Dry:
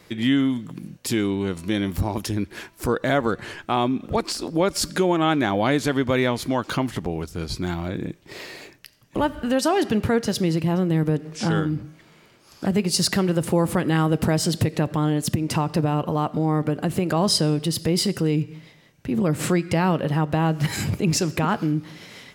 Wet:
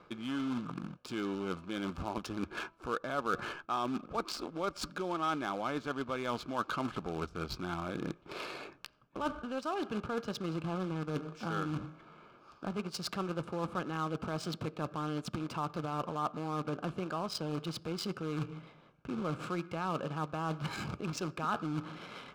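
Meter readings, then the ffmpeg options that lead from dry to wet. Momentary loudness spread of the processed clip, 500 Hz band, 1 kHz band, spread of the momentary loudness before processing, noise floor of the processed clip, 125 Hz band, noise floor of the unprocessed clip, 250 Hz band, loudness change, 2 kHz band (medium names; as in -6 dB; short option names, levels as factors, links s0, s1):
7 LU, -14.5 dB, -9.5 dB, 10 LU, -60 dBFS, -16.5 dB, -53 dBFS, -15.0 dB, -14.5 dB, -12.0 dB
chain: -af "acrusher=bits=3:mode=log:mix=0:aa=0.000001,lowshelf=f=450:g=-6,areverse,acompressor=threshold=0.0251:ratio=12,areverse,equalizer=f=100:t=o:w=0.33:g=-9,equalizer=f=1250:t=o:w=0.33:g=10,equalizer=f=2000:t=o:w=0.33:g=-3,adynamicsmooth=sensitivity=7:basefreq=1800,asuperstop=centerf=1900:order=4:qfactor=5.9"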